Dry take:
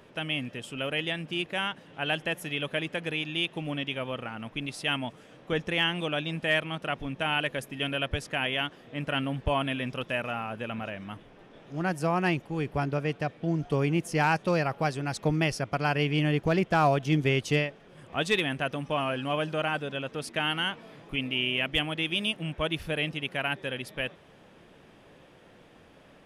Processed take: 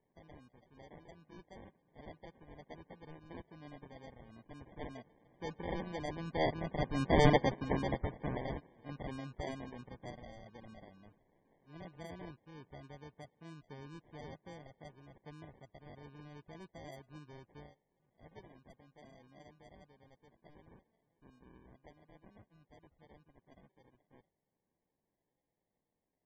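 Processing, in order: Doppler pass-by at 7.27 s, 5 m/s, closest 1.3 m; sample-and-hold 33×; loudest bins only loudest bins 64; trim +4 dB

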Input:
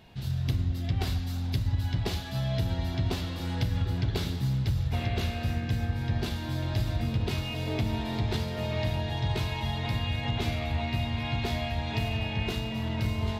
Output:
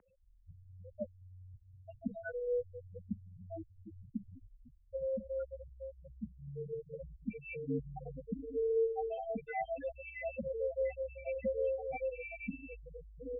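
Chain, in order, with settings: loudest bins only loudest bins 8; mistuned SSB -170 Hz 420–2200 Hz; trim +6.5 dB

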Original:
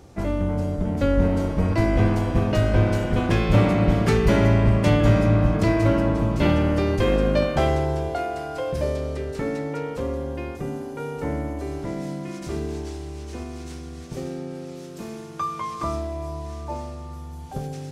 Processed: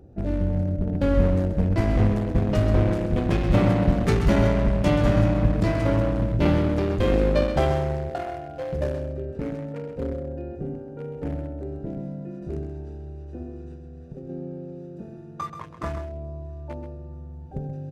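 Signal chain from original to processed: local Wiener filter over 41 samples; de-hum 110.4 Hz, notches 4; 13.73–14.29 s: compression, threshold -35 dBFS, peak gain reduction 7 dB; delay 131 ms -9.5 dB

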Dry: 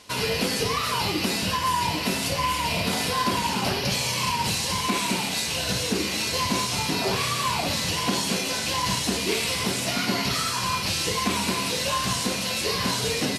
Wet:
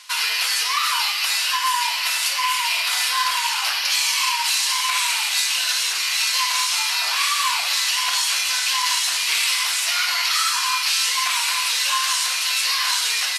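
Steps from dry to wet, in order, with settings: high-pass 1.1 kHz 24 dB/octave; trim +7 dB

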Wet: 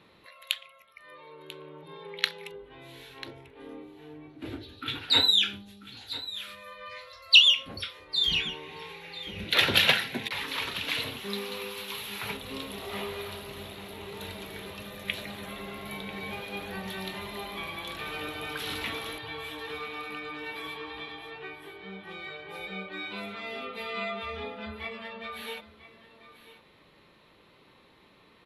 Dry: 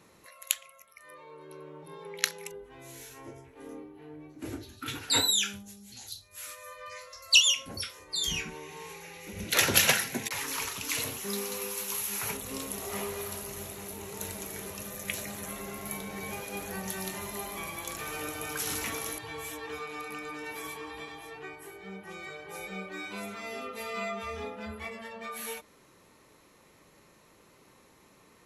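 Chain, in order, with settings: resonant high shelf 4.9 kHz -10.5 dB, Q 3; delay 992 ms -15.5 dB

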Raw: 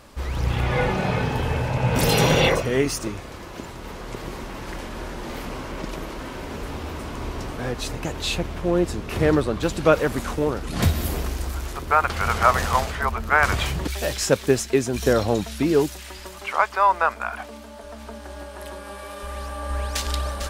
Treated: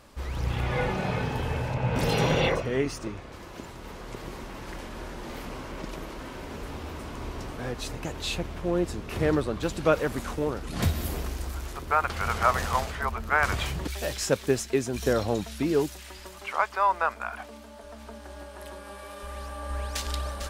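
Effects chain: 1.74–3.33 s: treble shelf 6.4 kHz -12 dB; trim -5.5 dB

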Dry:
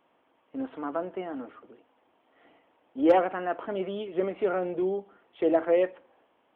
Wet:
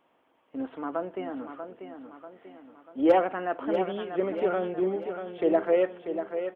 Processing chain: feedback delay 640 ms, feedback 48%, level -8.5 dB

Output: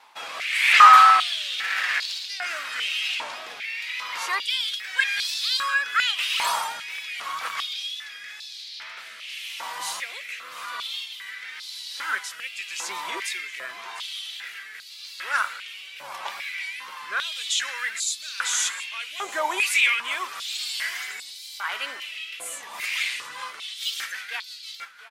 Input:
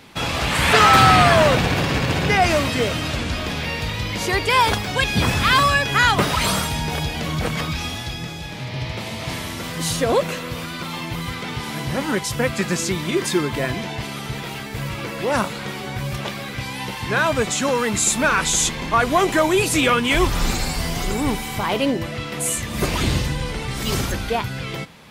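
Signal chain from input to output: on a send: delay 704 ms -16 dB; on the sum: wow and flutter 47 cents; rotary cabinet horn 0.9 Hz, later 6 Hz, at 22.91 s; step-sequenced high-pass 2.5 Hz 920–4200 Hz; trim -5.5 dB

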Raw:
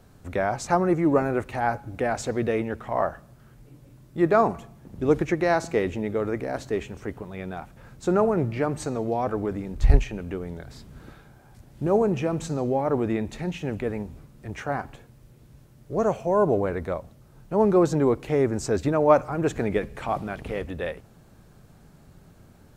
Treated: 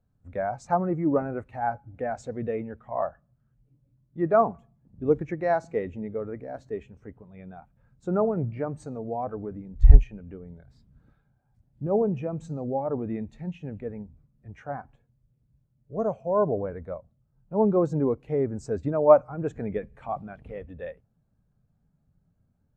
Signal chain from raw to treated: peaking EQ 360 Hz -5.5 dB 0.43 oct; spectral contrast expander 1.5:1; trim +3.5 dB

